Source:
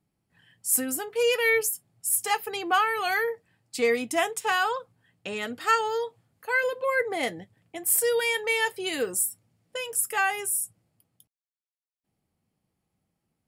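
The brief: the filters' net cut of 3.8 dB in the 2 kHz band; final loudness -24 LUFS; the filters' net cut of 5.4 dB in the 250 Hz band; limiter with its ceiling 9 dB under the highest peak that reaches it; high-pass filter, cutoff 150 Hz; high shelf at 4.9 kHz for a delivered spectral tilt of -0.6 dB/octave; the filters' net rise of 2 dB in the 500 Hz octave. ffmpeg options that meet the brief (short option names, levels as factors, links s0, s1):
-af "highpass=150,equalizer=f=250:t=o:g=-8.5,equalizer=f=500:t=o:g=4.5,equalizer=f=2000:t=o:g=-5.5,highshelf=f=4900:g=3,volume=1.5,alimiter=limit=0.224:level=0:latency=1"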